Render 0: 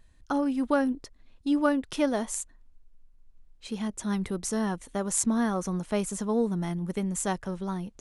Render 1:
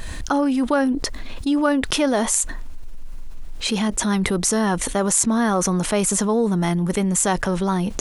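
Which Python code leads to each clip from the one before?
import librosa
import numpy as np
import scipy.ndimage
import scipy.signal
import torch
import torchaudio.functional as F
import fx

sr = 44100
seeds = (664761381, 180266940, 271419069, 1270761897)

y = fx.low_shelf(x, sr, hz=340.0, db=-5.5)
y = fx.env_flatten(y, sr, amount_pct=70)
y = F.gain(torch.from_numpy(y), 5.5).numpy()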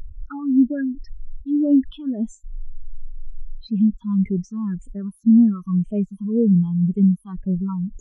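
y = fx.phaser_stages(x, sr, stages=6, low_hz=510.0, high_hz=1400.0, hz=1.9, feedback_pct=35)
y = fx.spectral_expand(y, sr, expansion=2.5)
y = F.gain(torch.from_numpy(y), -1.5).numpy()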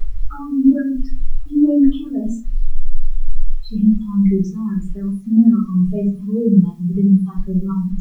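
y = fx.quant_dither(x, sr, seeds[0], bits=10, dither='none')
y = fx.room_shoebox(y, sr, seeds[1], volume_m3=170.0, walls='furnished', distance_m=3.9)
y = F.gain(torch.from_numpy(y), -5.5).numpy()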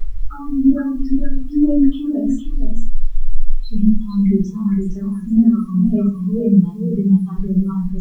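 y = x + 10.0 ** (-6.5 / 20.0) * np.pad(x, (int(463 * sr / 1000.0), 0))[:len(x)]
y = F.gain(torch.from_numpy(y), -1.0).numpy()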